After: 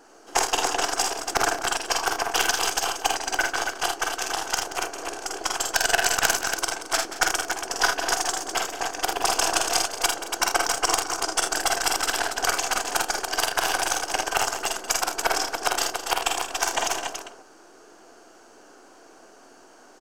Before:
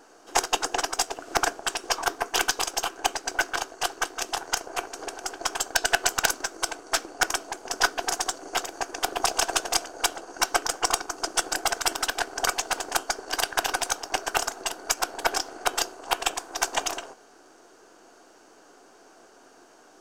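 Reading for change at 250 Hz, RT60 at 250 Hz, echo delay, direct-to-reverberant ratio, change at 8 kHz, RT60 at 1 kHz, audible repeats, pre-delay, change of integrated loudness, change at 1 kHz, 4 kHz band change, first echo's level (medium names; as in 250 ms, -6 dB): +2.5 dB, no reverb, 47 ms, no reverb, +3.0 dB, no reverb, 5, no reverb, +2.5 dB, +3.0 dB, +2.5 dB, -4.0 dB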